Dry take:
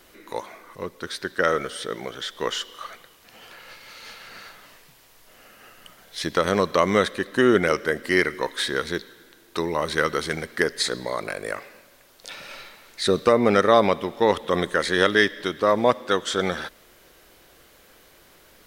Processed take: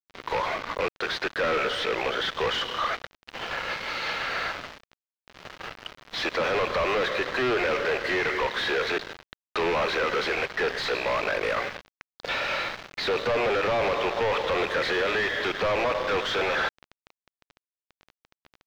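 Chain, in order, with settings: rattling part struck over -35 dBFS, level -15 dBFS; HPF 440 Hz 24 dB/oct; in parallel at -2 dB: compressor, threshold -28 dBFS, peak gain reduction 15 dB; on the sum: limiter -13.5 dBFS, peak gain reduction 10 dB; companded quantiser 2-bit; air absorption 240 m; gain +3 dB

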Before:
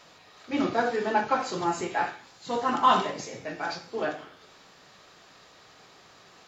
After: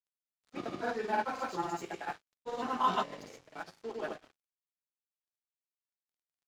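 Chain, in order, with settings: crossover distortion -43.5 dBFS; grains, grains 20/s, pitch spread up and down by 0 st; gain -6 dB

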